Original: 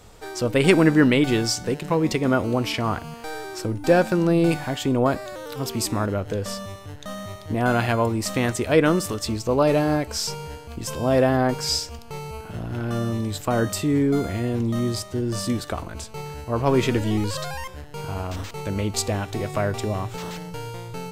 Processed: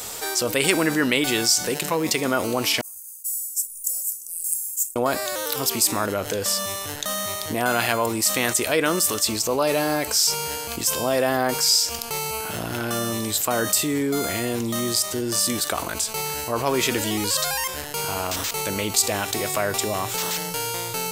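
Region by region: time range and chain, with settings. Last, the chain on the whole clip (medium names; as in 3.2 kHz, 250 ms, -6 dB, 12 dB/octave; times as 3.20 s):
2.81–4.96 s: inverse Chebyshev band-stop 110–4100 Hz + tilt shelf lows -5.5 dB, about 1.3 kHz + expander -40 dBFS
whole clip: RIAA curve recording; level flattener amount 50%; trim -4.5 dB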